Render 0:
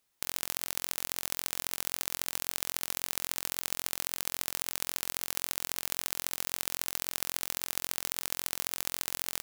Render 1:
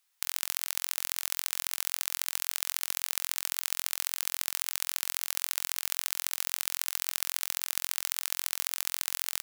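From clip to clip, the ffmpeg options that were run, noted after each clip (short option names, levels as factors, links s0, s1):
-af "highpass=1100,volume=1.33"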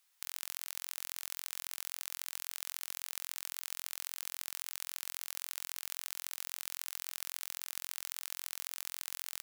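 -af "alimiter=limit=0.237:level=0:latency=1:release=267,volume=1.12"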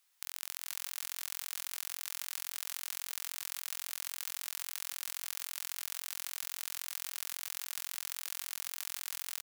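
-af "aecho=1:1:439:0.631"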